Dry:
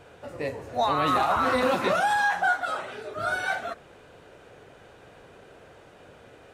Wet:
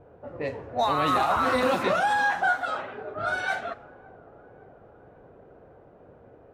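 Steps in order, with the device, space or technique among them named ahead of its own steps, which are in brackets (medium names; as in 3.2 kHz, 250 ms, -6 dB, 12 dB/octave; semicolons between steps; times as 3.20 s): cassette deck with a dynamic noise filter (white noise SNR 31 dB; level-controlled noise filter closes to 680 Hz, open at -22 dBFS); 1.83–3.38 s: treble shelf 8.4 kHz -9.5 dB; feedback echo behind a low-pass 560 ms, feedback 53%, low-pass 910 Hz, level -19.5 dB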